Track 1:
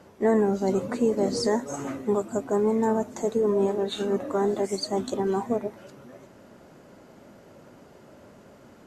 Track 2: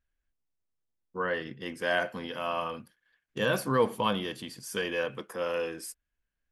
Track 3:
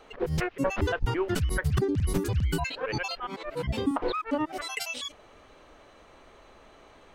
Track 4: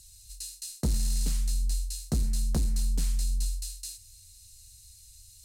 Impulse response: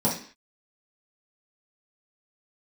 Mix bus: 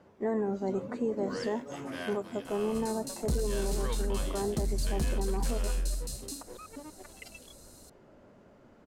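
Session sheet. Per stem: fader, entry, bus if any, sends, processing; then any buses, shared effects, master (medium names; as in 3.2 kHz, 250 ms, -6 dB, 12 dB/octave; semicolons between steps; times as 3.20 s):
-7.0 dB, 0.00 s, no send, low-pass 2.9 kHz 6 dB/octave
-12.5 dB, 0.10 s, no send, formants flattened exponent 0.6
-9.5 dB, 2.45 s, no send, local Wiener filter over 41 samples; compression, threshold -33 dBFS, peak gain reduction 13 dB
-2.5 dB, 2.45 s, no send, none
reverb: none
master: peak limiter -22 dBFS, peak gain reduction 6.5 dB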